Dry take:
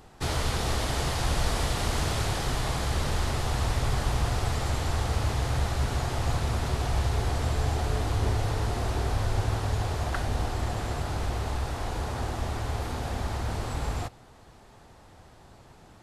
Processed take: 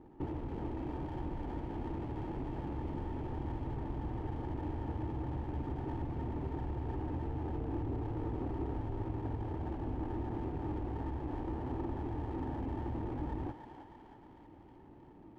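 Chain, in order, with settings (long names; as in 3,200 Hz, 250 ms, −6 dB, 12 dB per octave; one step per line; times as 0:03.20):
flat-topped bell 2,500 Hz +14.5 dB 1 octave
downward compressor, threshold −27 dBFS, peak gain reduction 8.5 dB
formant resonators in series u
on a send: feedback echo with a band-pass in the loop 326 ms, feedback 79%, band-pass 1,600 Hz, level −3.5 dB
on the sum: wrong playback speed 24 fps film run at 25 fps
windowed peak hold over 9 samples
level +8 dB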